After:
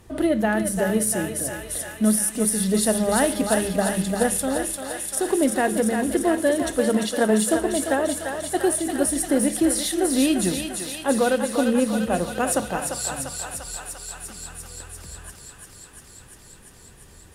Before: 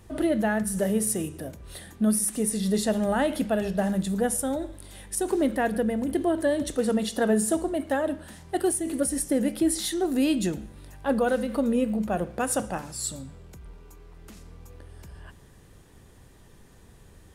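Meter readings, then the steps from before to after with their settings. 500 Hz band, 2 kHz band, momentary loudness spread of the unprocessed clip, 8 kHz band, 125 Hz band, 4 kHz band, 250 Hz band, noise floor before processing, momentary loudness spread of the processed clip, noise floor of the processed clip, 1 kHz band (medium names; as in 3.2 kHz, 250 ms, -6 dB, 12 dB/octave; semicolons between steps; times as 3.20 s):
+4.0 dB, +6.0 dB, 9 LU, +6.5 dB, +2.5 dB, +6.5 dB, +3.0 dB, -52 dBFS, 14 LU, -48 dBFS, +5.0 dB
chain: hum notches 50/100/150/200 Hz; thinning echo 346 ms, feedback 81%, high-pass 640 Hz, level -4 dB; Chebyshev shaper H 3 -21 dB, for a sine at -10 dBFS; trim +5.5 dB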